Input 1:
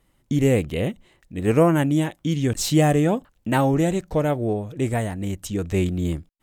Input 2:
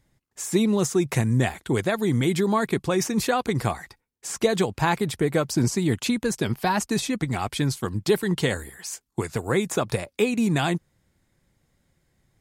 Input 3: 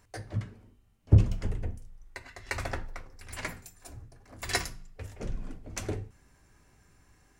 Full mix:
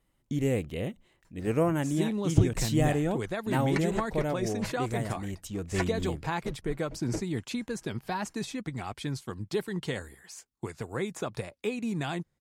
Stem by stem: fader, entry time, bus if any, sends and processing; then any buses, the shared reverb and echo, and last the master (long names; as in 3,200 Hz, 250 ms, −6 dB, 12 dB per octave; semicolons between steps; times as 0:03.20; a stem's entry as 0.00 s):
−9.0 dB, 0.00 s, no send, no processing
−9.5 dB, 1.45 s, no send, high-shelf EQ 10,000 Hz −8.5 dB
−0.5 dB, 1.25 s, no send, treble cut that deepens with the level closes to 1,400 Hz, closed at −27.5 dBFS; comb filter 6.2 ms, depth 90%; tremolo with a sine in dB 4.4 Hz, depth 34 dB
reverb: not used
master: no processing